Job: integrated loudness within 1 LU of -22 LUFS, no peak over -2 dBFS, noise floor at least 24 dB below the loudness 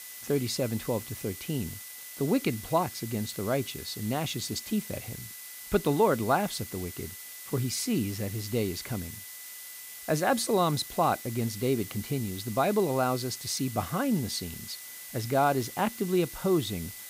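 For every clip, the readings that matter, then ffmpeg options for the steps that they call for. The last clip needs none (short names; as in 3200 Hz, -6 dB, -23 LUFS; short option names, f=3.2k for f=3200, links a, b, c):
steady tone 2000 Hz; tone level -52 dBFS; noise floor -44 dBFS; noise floor target -54 dBFS; loudness -30.0 LUFS; peak -11.5 dBFS; loudness target -22.0 LUFS
-> -af "bandreject=f=2k:w=30"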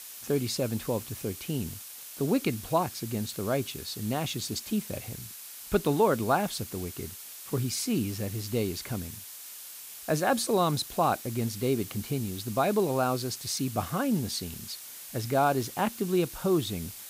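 steady tone none; noise floor -44 dBFS; noise floor target -54 dBFS
-> -af "afftdn=nr=10:nf=-44"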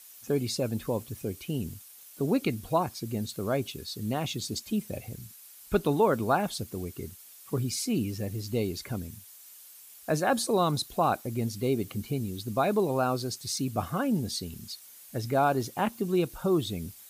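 noise floor -51 dBFS; noise floor target -54 dBFS
-> -af "afftdn=nr=6:nf=-51"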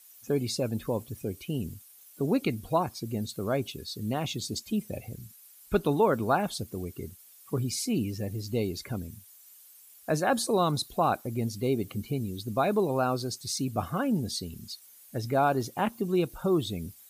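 noise floor -54 dBFS; loudness -30.0 LUFS; peak -12.0 dBFS; loudness target -22.0 LUFS
-> -af "volume=8dB"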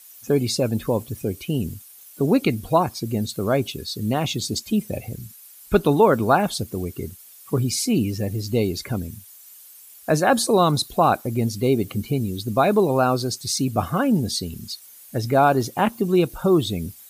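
loudness -22.0 LUFS; peak -4.0 dBFS; noise floor -46 dBFS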